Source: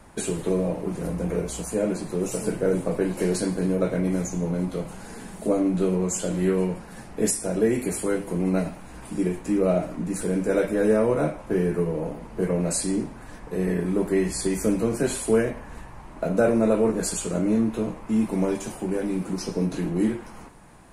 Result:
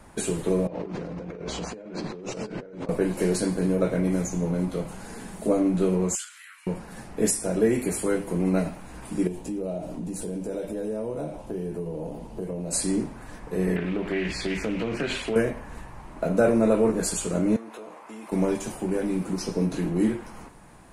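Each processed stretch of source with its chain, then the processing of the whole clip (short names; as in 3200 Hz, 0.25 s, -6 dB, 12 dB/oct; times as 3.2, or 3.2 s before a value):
0.67–2.89 LPF 5200 Hz 24 dB/oct + low shelf 110 Hz -11 dB + negative-ratio compressor -36 dBFS
6.15–6.67 compressor 5:1, threshold -25 dBFS + steep high-pass 1300 Hz 48 dB/oct
9.27–12.73 band shelf 1600 Hz -9 dB 1.3 oct + compressor 3:1, threshold -30 dBFS
13.76–15.36 compressor 4:1, threshold -24 dBFS + EQ curve 960 Hz 0 dB, 2800 Hz +13 dB, 11000 Hz -18 dB + Doppler distortion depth 0.17 ms
17.56–18.32 HPF 690 Hz + tilt shelf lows +3.5 dB, about 1500 Hz + compressor 4:1, threshold -37 dBFS
whole clip: dry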